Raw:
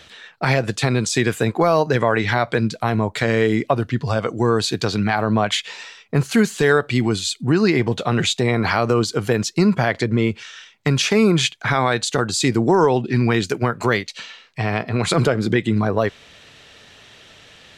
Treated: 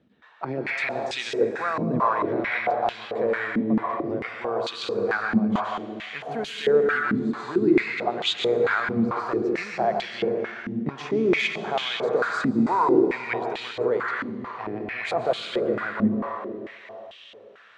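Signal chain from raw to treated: reverb RT60 3.1 s, pre-delay 0.115 s, DRR -1 dB; stepped band-pass 4.5 Hz 230–3100 Hz; gain +1 dB

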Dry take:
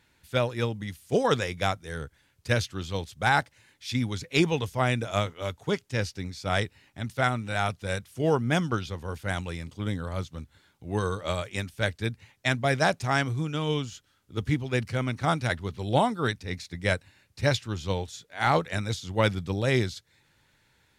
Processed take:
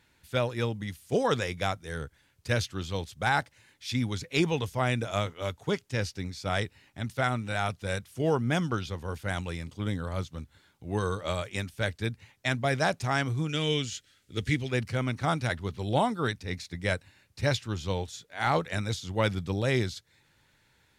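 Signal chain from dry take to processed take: 13.49–14.71 graphic EQ 500/1000/2000/4000/8000 Hz +3/-9/+8/+5/+7 dB; in parallel at -2 dB: limiter -19.5 dBFS, peak gain reduction 9 dB; on the sum: gain -5.5 dB

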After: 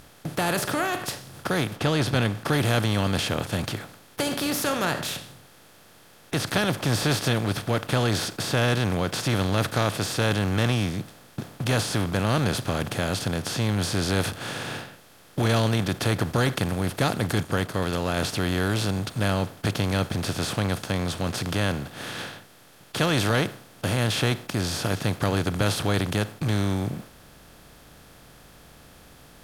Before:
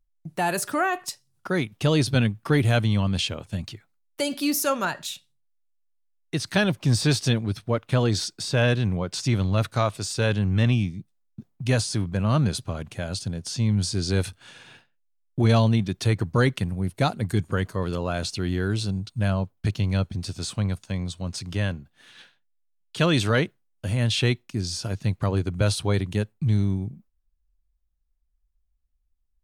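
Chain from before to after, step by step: per-bin compression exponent 0.4; 1.75–2.48 LPF 4200 Hz -> 10000 Hz 6 dB/oct; 17.43–18.17 upward expander 1.5:1, over -28 dBFS; gain -6.5 dB

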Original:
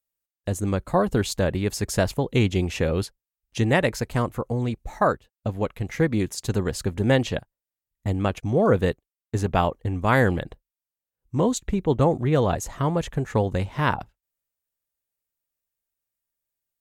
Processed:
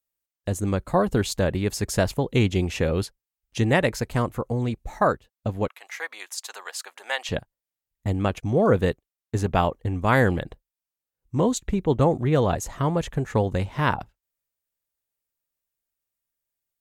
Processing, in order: 5.68–7.29 HPF 790 Hz 24 dB/oct

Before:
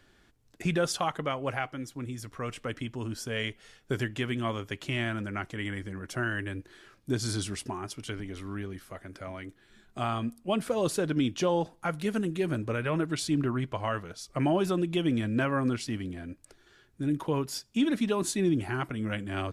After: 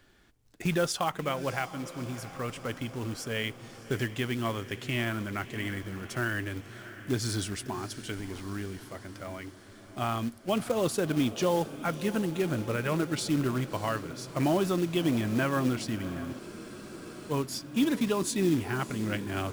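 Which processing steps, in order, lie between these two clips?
short-mantissa float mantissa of 2-bit; diffused feedback echo 0.637 s, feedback 64%, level -14.5 dB; spectral freeze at 16.41, 0.91 s

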